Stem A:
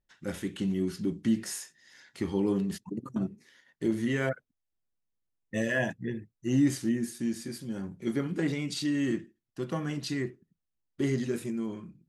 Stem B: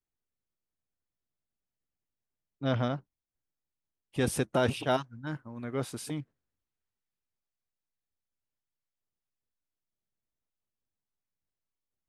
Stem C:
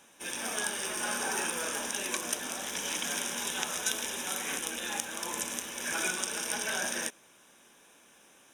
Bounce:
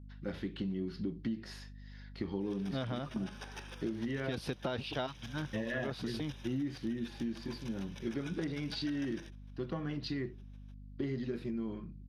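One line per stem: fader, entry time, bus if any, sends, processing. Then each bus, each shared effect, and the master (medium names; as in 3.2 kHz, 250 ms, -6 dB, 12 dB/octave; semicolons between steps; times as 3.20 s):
-2.0 dB, 0.00 s, no send, treble shelf 2.6 kHz -9.5 dB
-1.0 dB, 0.10 s, no send, none
-11.0 dB, 2.20 s, no send, spectral gate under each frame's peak -30 dB strong; square tremolo 6.6 Hz, depth 65%, duty 20%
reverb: none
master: resonant high shelf 5.9 kHz -10 dB, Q 3; hum 50 Hz, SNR 17 dB; compression, threshold -33 dBFS, peak gain reduction 10.5 dB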